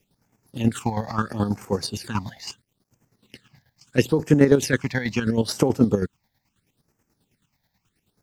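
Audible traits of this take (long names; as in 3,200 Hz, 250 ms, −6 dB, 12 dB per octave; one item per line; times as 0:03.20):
a quantiser's noise floor 12 bits, dither none
phaser sweep stages 8, 0.75 Hz, lowest notch 360–3,800 Hz
chopped level 9.3 Hz, depth 60%, duty 35%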